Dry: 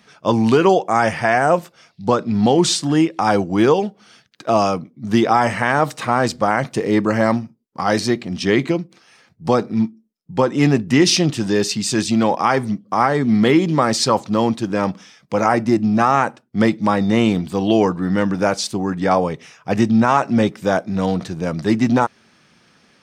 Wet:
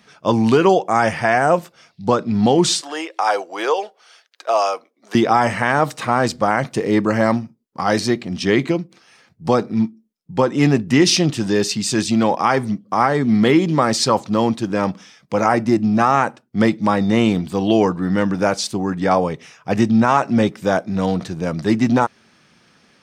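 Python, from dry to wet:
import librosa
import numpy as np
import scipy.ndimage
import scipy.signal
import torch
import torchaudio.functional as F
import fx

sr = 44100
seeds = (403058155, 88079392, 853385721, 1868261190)

y = fx.highpass(x, sr, hz=490.0, slope=24, at=(2.81, 5.15))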